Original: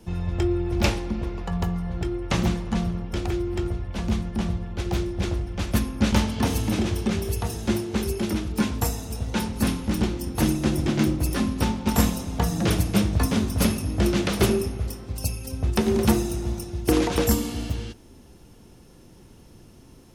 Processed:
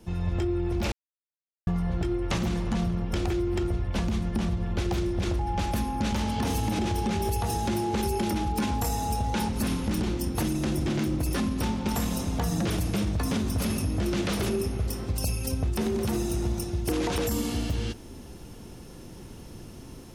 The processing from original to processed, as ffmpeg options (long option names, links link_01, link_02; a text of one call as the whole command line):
ffmpeg -i in.wav -filter_complex "[0:a]asettb=1/sr,asplit=3[link_01][link_02][link_03];[link_01]atrim=end=5.394[link_04];[link_02]atrim=start=5.39:end=9.49,asetpts=PTS-STARTPTS,afade=type=in:duration=0.004:curve=qsin,afade=type=out:start_time=4.096:duration=0.004:curve=qsin,aeval=exprs='val(0)+0.0251*sin(2*PI*830*n/s)':channel_layout=same[link_05];[link_03]atrim=start=9.486[link_06];[link_04][link_05]acrossfade=duration=0.004:curve1=hsin:curve2=qsin[link_07];[link_07][link_06]acrossfade=duration=0.004:curve1=qsin:curve2=hsin,asplit=3[link_08][link_09][link_10];[link_08]atrim=end=0.92,asetpts=PTS-STARTPTS,afade=type=out:start_time=0.916:duration=0.004:curve=hsin[link_11];[link_09]atrim=start=0.92:end=1.67,asetpts=PTS-STARTPTS,volume=0[link_12];[link_10]atrim=start=1.67,asetpts=PTS-STARTPTS,afade=type=in:duration=0.004:curve=hsin[link_13];[link_11][link_12][link_13]concat=n=3:v=0:a=1,dynaudnorm=framelen=190:gausssize=3:maxgain=8.5dB,alimiter=limit=-12dB:level=0:latency=1:release=23,acompressor=threshold=-21dB:ratio=6,volume=-2.5dB" out.wav